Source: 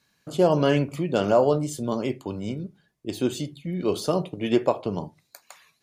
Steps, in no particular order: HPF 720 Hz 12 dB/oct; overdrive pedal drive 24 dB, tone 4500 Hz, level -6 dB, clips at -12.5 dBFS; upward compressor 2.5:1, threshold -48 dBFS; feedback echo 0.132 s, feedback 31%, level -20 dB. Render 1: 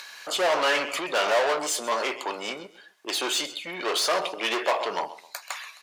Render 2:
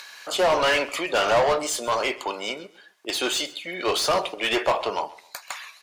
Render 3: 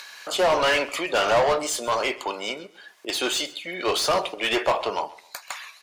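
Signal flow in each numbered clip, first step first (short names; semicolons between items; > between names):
feedback echo > upward compressor > overdrive pedal > HPF; upward compressor > HPF > overdrive pedal > feedback echo; HPF > upward compressor > overdrive pedal > feedback echo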